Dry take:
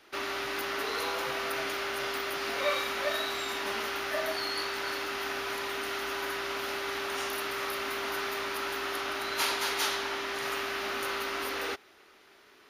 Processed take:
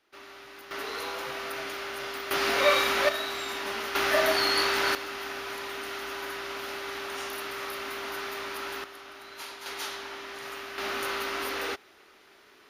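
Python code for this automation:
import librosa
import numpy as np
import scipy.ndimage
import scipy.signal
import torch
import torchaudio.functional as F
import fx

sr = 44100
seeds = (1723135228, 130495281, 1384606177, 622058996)

y = fx.gain(x, sr, db=fx.steps((0.0, -13.0), (0.71, -2.5), (2.31, 7.0), (3.09, 0.0), (3.95, 8.0), (4.95, -2.0), (8.84, -12.0), (9.66, -6.0), (10.78, 1.5)))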